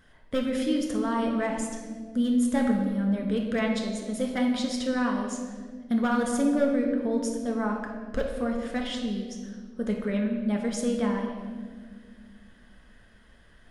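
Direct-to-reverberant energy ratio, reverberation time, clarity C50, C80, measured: 0.5 dB, 1.8 s, 4.0 dB, 5.5 dB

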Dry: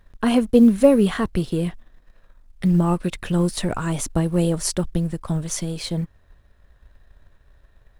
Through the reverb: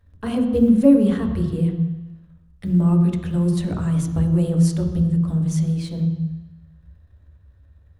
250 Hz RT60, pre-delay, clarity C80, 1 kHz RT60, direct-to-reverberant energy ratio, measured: 1.0 s, 3 ms, 8.5 dB, 1.2 s, 2.5 dB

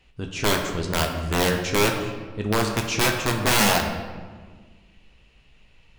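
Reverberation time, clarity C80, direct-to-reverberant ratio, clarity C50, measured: 1.6 s, 7.0 dB, 2.0 dB, 5.5 dB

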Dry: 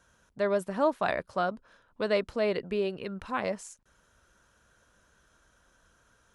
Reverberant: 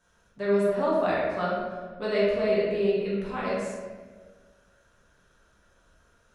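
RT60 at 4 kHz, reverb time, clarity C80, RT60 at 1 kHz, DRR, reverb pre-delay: 0.90 s, 1.5 s, 2.0 dB, 1.2 s, -8.5 dB, 5 ms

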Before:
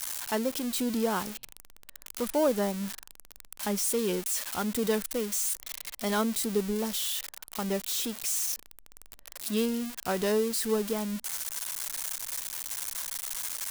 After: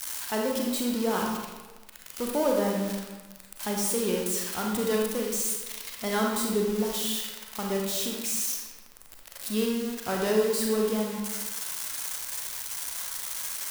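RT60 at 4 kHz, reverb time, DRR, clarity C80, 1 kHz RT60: 0.85 s, 1.2 s, -0.5 dB, 4.0 dB, 1.2 s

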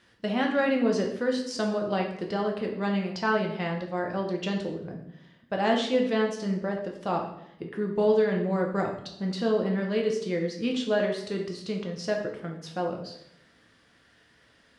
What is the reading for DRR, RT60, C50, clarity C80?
1.0 dB, 0.75 s, 6.0 dB, 9.5 dB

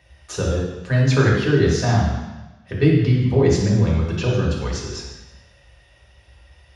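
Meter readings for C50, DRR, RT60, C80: 1.0 dB, -5.0 dB, 1.1 s, 4.0 dB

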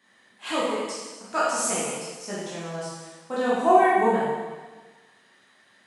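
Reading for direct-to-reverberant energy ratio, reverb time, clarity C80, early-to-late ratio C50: -9.0 dB, 1.4 s, 1.0 dB, -2.0 dB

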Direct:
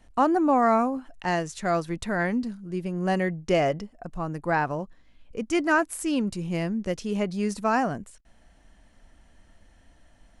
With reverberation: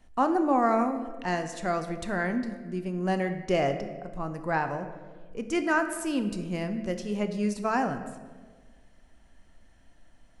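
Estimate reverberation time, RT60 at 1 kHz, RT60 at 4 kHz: 1.5 s, 1.3 s, 0.90 s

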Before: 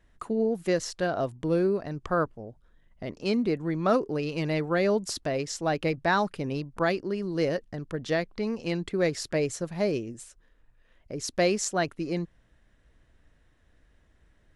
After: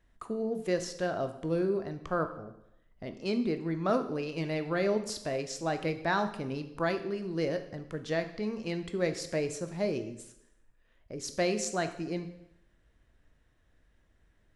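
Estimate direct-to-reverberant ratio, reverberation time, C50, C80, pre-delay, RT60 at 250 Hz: 8.0 dB, 0.80 s, 11.0 dB, 13.5 dB, 7 ms, 0.75 s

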